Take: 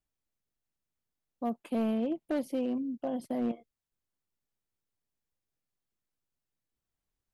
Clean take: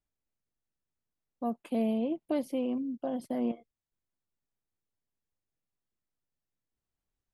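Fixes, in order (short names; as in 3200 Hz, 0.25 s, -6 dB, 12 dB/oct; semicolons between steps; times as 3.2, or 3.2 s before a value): clip repair -25 dBFS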